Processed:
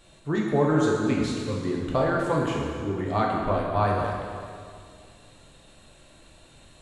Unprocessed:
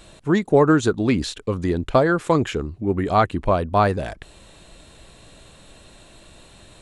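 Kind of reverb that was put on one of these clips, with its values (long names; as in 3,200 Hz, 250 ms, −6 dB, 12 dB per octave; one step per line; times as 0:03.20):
dense smooth reverb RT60 2.2 s, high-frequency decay 0.85×, DRR −3 dB
level −10 dB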